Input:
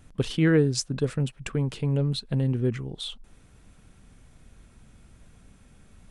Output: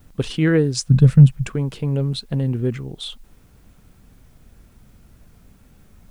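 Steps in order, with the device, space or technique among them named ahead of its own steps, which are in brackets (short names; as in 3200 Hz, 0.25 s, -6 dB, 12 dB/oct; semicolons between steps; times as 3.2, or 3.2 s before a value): plain cassette with noise reduction switched in (mismatched tape noise reduction decoder only; wow and flutter; white noise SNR 40 dB); 0.87–1.46 resonant low shelf 230 Hz +12.5 dB, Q 1.5; gain +3.5 dB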